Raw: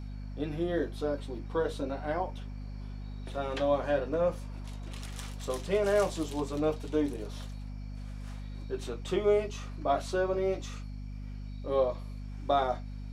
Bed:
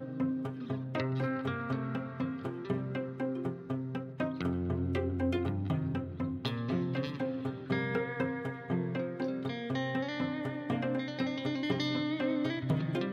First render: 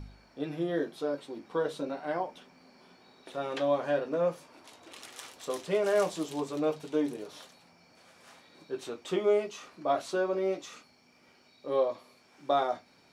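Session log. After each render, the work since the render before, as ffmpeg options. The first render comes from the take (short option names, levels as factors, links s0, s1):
-af "bandreject=f=50:t=h:w=4,bandreject=f=100:t=h:w=4,bandreject=f=150:t=h:w=4,bandreject=f=200:t=h:w=4,bandreject=f=250:t=h:w=4"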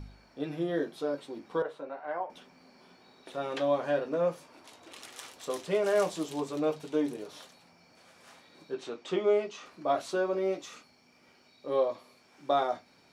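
-filter_complex "[0:a]asettb=1/sr,asplit=3[s0][s1][s2];[s0]atrim=end=1.624[s3];[s1]atrim=start=1.62:end=2.3,asetpts=PTS-STARTPTS,afade=t=in:d=0.004:c=qsin,afade=t=out:st=0.676:d=0.004:c=qsin,acrossover=split=480 2200:gain=0.178 1 0.126[s4][s5][s6];[s4][s5][s6]amix=inputs=3:normalize=0[s7];[s2]atrim=start=2.296[s8];[s3][s7]acrossfade=d=0.004:c1=hsin:c2=qsin[s9];[s9][s8]acrossfade=d=0.004:c1=qsin:c2=hsin,asettb=1/sr,asplit=3[s10][s11][s12];[s10]atrim=end=8.744[s13];[s11]atrim=start=8.74:end=9.66,asetpts=PTS-STARTPTS,afade=t=in:d=0.004:c=qsin,afade=t=out:st=0.916:d=0.004:c=qsin,highpass=140,lowpass=6100[s14];[s12]atrim=start=9.656[s15];[s13][s14]acrossfade=d=0.004:c1=hsin:c2=qsin[s16];[s16][s15]acrossfade=d=0.004:c1=qsin:c2=hsin"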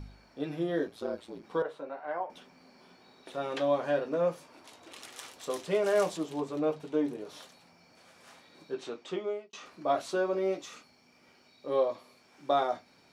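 -filter_complex "[0:a]asettb=1/sr,asplit=3[s0][s1][s2];[s0]atrim=end=0.874[s3];[s1]atrim=start=0.87:end=1.44,asetpts=PTS-STARTPTS,afade=t=in:d=0.004:c=qsin,afade=t=out:st=0.566:d=0.004:c=qsin,aeval=exprs='val(0)*sin(2*PI*57*n/s)':c=same[s4];[s2]atrim=start=1.436[s5];[s3][s4]acrossfade=d=0.004:c1=hsin:c2=qsin[s6];[s6][s5]acrossfade=d=0.004:c1=qsin:c2=hsin,asettb=1/sr,asplit=3[s7][s8][s9];[s7]atrim=end=6.174[s10];[s8]atrim=start=6.17:end=7.27,asetpts=PTS-STARTPTS,afade=t=in:d=0.004:c=qsin,afade=t=out:st=1.096:d=0.004:c=qsin,highshelf=f=3200:g=-9[s11];[s9]atrim=start=7.266[s12];[s10][s11]acrossfade=d=0.004:c1=hsin:c2=qsin[s13];[s13][s12]acrossfade=d=0.004:c1=qsin:c2=hsin,asplit=2[s14][s15];[s14]atrim=end=9.53,asetpts=PTS-STARTPTS,afade=t=out:st=8.89:d=0.64[s16];[s15]atrim=start=9.53,asetpts=PTS-STARTPTS,afade=t=in:d=0.004:c=hsin[s17];[s16][s17]concat=n=2:v=0:a=1"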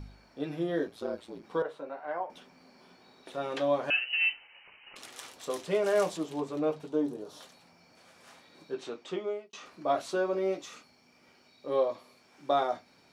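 -filter_complex "[0:a]asettb=1/sr,asplit=3[s0][s1][s2];[s0]atrim=end=3.904[s3];[s1]atrim=start=3.9:end=4.96,asetpts=PTS-STARTPTS,afade=t=in:d=0.004:c=qsin,afade=t=out:st=1.056:d=0.004:c=qsin,lowpass=f=2700:t=q:w=0.5098,lowpass=f=2700:t=q:w=0.6013,lowpass=f=2700:t=q:w=0.9,lowpass=f=2700:t=q:w=2.563,afreqshift=-3200[s4];[s2]atrim=start=4.956[s5];[s3][s4]acrossfade=d=0.004:c1=hsin:c2=qsin[s6];[s6][s5]acrossfade=d=0.004:c1=qsin:c2=hsin,asettb=1/sr,asplit=3[s7][s8][s9];[s7]atrim=end=6.874[s10];[s8]atrim=start=6.87:end=7.41,asetpts=PTS-STARTPTS,afade=t=in:d=0.004:c=qsin,afade=t=out:st=0.536:d=0.004:c=qsin,equalizer=f=2200:t=o:w=0.83:g=-11[s11];[s9]atrim=start=7.406[s12];[s10][s11]acrossfade=d=0.004:c1=hsin:c2=qsin[s13];[s13][s12]acrossfade=d=0.004:c1=qsin:c2=hsin"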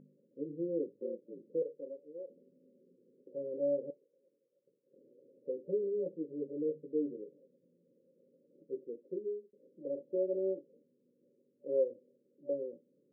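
-af "aemphasis=mode=production:type=riaa,afftfilt=real='re*between(b*sr/4096,110,580)':imag='im*between(b*sr/4096,110,580)':win_size=4096:overlap=0.75"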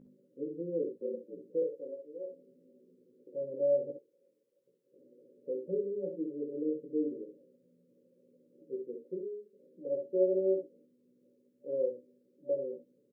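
-filter_complex "[0:a]asplit=2[s0][s1];[s1]adelay=16,volume=0.631[s2];[s0][s2]amix=inputs=2:normalize=0,aecho=1:1:52|65:0.266|0.422"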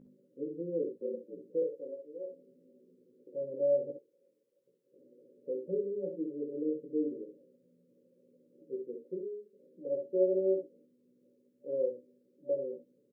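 -af anull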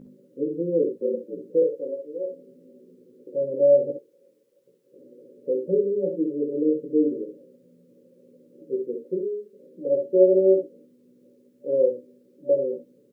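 -af "volume=3.76"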